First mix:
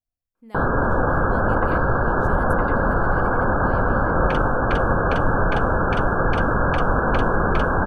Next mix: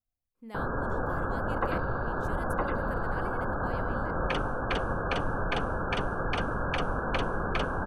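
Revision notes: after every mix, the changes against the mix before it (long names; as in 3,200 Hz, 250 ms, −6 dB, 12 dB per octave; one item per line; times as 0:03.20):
first sound −11.5 dB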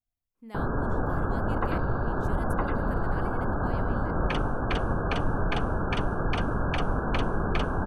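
first sound: add tilt shelving filter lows +5.5 dB, about 1,100 Hz
master: add parametric band 520 Hz −6 dB 0.22 octaves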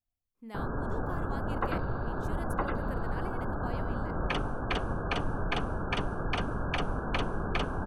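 first sound −5.5 dB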